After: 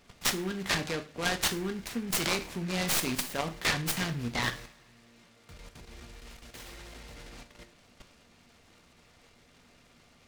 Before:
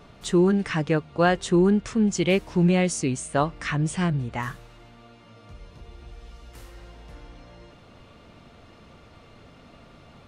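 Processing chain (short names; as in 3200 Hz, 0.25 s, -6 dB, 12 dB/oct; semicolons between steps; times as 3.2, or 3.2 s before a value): tracing distortion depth 0.12 ms; harmonic-percussive split percussive +5 dB; level quantiser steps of 15 dB; resonant high shelf 1600 Hz +8 dB, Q 1.5; two-slope reverb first 0.35 s, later 2.2 s, from -26 dB, DRR 4.5 dB; noise-modulated delay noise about 1600 Hz, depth 0.064 ms; gain -3.5 dB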